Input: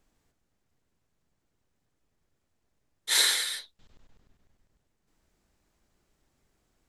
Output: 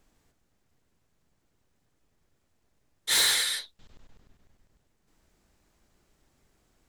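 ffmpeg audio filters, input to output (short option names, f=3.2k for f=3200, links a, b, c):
-af "asoftclip=type=tanh:threshold=-23dB,volume=4.5dB"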